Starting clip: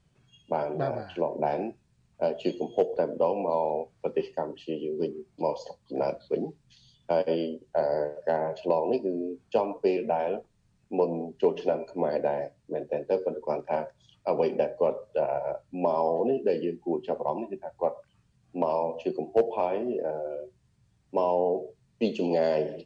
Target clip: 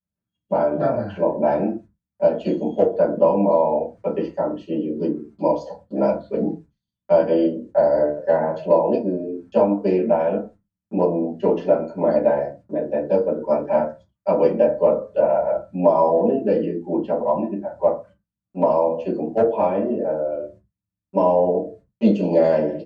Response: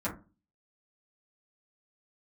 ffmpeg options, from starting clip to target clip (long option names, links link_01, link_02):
-filter_complex "[0:a]agate=range=-31dB:threshold=-52dB:ratio=16:detection=peak,asplit=2[link_01][link_02];[link_02]adelay=30,volume=-14dB[link_03];[link_01][link_03]amix=inputs=2:normalize=0[link_04];[1:a]atrim=start_sample=2205,atrim=end_sample=6174[link_05];[link_04][link_05]afir=irnorm=-1:irlink=0"